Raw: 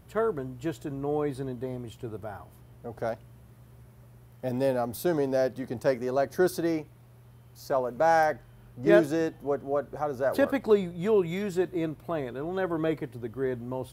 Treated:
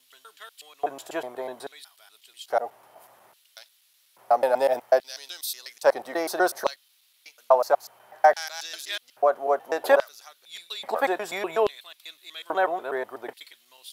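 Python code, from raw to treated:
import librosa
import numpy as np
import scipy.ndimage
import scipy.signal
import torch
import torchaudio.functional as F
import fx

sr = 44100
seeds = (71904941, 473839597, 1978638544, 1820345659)

y = fx.block_reorder(x, sr, ms=123.0, group=5)
y = fx.filter_lfo_highpass(y, sr, shape='square', hz=0.6, low_hz=740.0, high_hz=3700.0, q=2.2)
y = F.gain(torch.from_numpy(y), 6.5).numpy()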